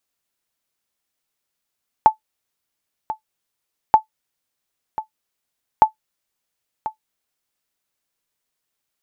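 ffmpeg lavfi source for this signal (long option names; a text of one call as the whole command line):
ffmpeg -f lavfi -i "aevalsrc='0.891*(sin(2*PI*871*mod(t,1.88))*exp(-6.91*mod(t,1.88)/0.11)+0.188*sin(2*PI*871*max(mod(t,1.88)-1.04,0))*exp(-6.91*max(mod(t,1.88)-1.04,0)/0.11))':duration=5.64:sample_rate=44100" out.wav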